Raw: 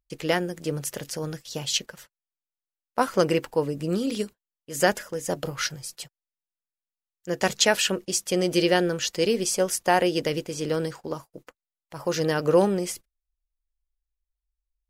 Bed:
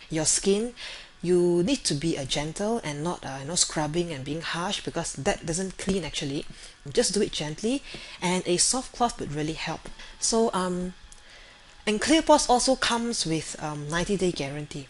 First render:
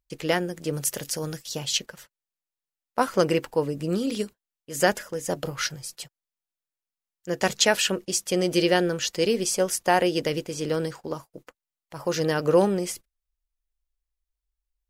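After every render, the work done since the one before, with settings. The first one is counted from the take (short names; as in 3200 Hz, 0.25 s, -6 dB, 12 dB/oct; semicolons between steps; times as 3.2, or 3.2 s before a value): 0.73–1.55 high shelf 4600 Hz +7.5 dB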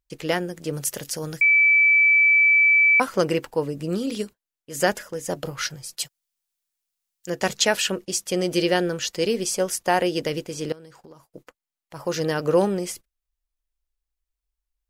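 1.41–3 bleep 2310 Hz -13 dBFS; 5.98–7.3 high shelf 2300 Hz +11.5 dB; 10.72–11.29 compressor 4:1, threshold -45 dBFS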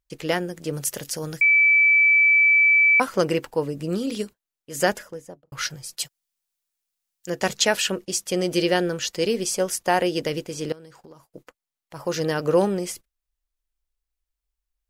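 4.86–5.52 studio fade out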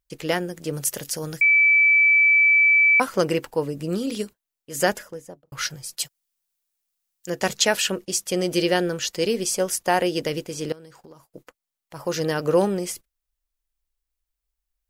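high shelf 10000 Hz +4.5 dB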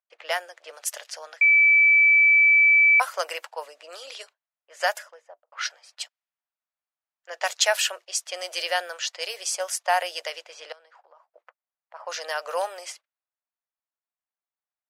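low-pass opened by the level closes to 1500 Hz, open at -18.5 dBFS; elliptic high-pass 620 Hz, stop band 70 dB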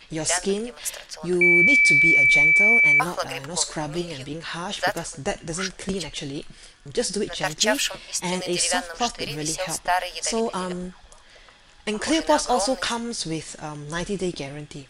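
add bed -1.5 dB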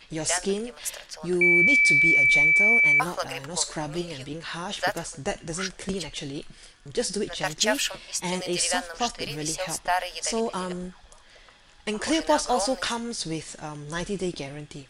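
gain -2.5 dB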